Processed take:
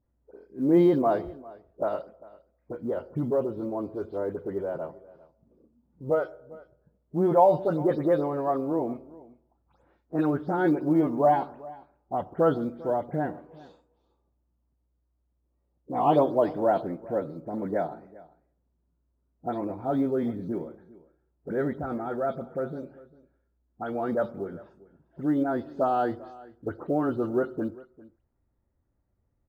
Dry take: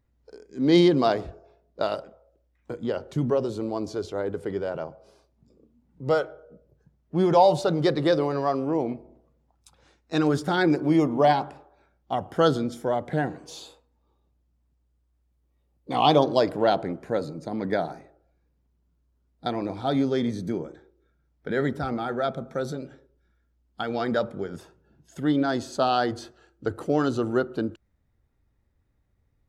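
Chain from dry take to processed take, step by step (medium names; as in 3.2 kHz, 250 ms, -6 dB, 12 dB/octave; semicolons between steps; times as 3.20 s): delay that grows with frequency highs late, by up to 148 ms; low-pass 1.1 kHz 12 dB/octave; bass shelf 200 Hz -6 dB; short-mantissa float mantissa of 6-bit; delay 399 ms -21 dB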